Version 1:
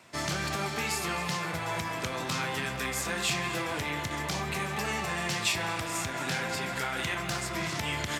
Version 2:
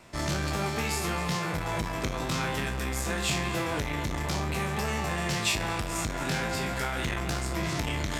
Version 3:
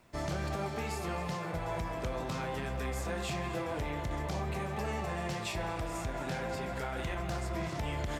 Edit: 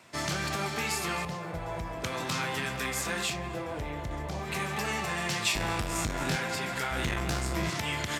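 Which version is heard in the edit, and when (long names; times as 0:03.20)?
1
0:01.25–0:02.04: punch in from 3
0:03.30–0:04.46: punch in from 3, crossfade 0.16 s
0:05.56–0:06.36: punch in from 2
0:06.91–0:07.70: punch in from 2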